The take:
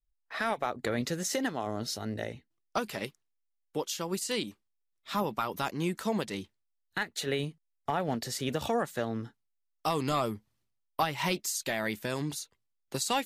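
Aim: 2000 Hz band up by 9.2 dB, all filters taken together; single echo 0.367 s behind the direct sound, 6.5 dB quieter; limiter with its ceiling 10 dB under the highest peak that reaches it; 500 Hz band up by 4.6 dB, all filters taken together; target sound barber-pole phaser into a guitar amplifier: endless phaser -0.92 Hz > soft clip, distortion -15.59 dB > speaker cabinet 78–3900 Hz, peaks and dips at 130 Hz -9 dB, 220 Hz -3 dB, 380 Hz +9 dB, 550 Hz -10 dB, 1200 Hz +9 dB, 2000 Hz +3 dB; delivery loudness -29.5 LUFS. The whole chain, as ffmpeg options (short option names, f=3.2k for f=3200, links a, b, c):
-filter_complex "[0:a]equalizer=f=500:t=o:g=5,equalizer=f=2k:t=o:g=8,alimiter=limit=-23dB:level=0:latency=1,aecho=1:1:367:0.473,asplit=2[a][b];[b]afreqshift=-0.92[c];[a][c]amix=inputs=2:normalize=1,asoftclip=threshold=-30.5dB,highpass=78,equalizer=f=130:t=q:w=4:g=-9,equalizer=f=220:t=q:w=4:g=-3,equalizer=f=380:t=q:w=4:g=9,equalizer=f=550:t=q:w=4:g=-10,equalizer=f=1.2k:t=q:w=4:g=9,equalizer=f=2k:t=q:w=4:g=3,lowpass=f=3.9k:w=0.5412,lowpass=f=3.9k:w=1.3066,volume=9dB"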